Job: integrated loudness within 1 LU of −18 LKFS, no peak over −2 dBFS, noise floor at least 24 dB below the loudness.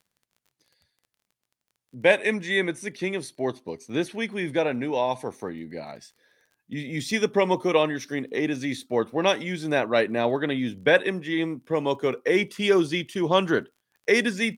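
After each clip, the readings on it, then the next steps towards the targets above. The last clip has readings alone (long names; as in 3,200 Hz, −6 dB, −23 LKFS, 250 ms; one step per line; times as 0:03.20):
crackle rate 25 per second; integrated loudness −25.0 LKFS; sample peak −4.0 dBFS; target loudness −18.0 LKFS
→ click removal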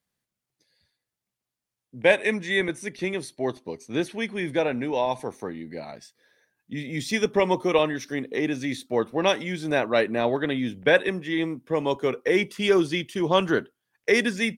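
crackle rate 0.069 per second; integrated loudness −25.0 LKFS; sample peak −4.0 dBFS; target loudness −18.0 LKFS
→ level +7 dB
brickwall limiter −2 dBFS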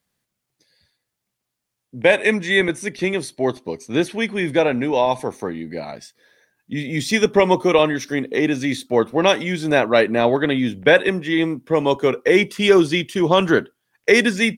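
integrated loudness −18.5 LKFS; sample peak −2.0 dBFS; background noise floor −80 dBFS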